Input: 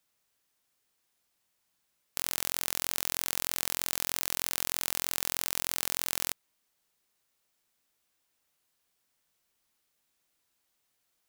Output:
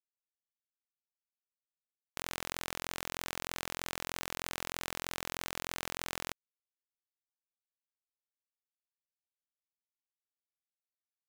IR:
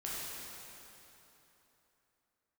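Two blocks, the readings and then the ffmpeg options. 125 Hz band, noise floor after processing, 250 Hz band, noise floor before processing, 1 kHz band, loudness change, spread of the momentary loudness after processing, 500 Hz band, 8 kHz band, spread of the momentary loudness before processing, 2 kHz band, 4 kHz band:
+0.5 dB, under -85 dBFS, +0.5 dB, -78 dBFS, 0.0 dB, -9.0 dB, 3 LU, +0.5 dB, -10.5 dB, 3 LU, -1.5 dB, -6.0 dB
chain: -af "aemphasis=mode=reproduction:type=75kf,acrusher=bits=5:mix=0:aa=0.5,volume=1dB"

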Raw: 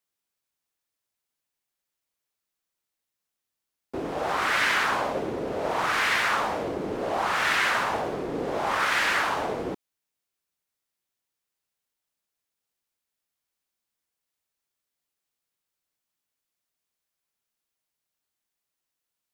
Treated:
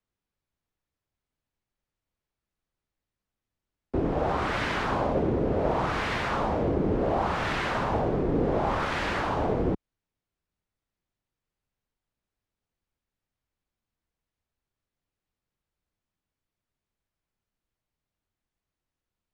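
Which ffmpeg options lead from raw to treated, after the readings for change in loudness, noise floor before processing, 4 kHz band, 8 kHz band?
-2.0 dB, -85 dBFS, -7.5 dB, -11.5 dB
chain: -filter_complex "[0:a]aemphasis=mode=reproduction:type=riaa,acrossover=split=210|1100|2600[a][b][c][d];[c]acompressor=threshold=-40dB:ratio=6[e];[a][b][e][d]amix=inputs=4:normalize=0"

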